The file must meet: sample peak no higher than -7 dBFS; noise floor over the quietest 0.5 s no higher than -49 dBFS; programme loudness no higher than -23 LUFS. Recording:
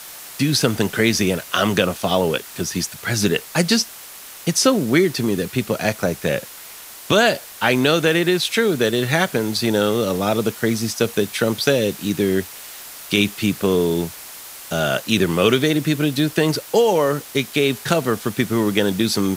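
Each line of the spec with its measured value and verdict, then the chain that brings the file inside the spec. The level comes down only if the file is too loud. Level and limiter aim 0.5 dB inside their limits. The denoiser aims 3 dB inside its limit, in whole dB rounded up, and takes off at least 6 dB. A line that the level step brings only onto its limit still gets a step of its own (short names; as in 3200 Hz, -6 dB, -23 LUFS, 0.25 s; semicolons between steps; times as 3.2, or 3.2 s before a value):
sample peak -2.0 dBFS: fail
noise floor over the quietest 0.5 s -38 dBFS: fail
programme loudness -19.5 LUFS: fail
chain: denoiser 10 dB, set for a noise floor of -38 dBFS; gain -4 dB; limiter -7.5 dBFS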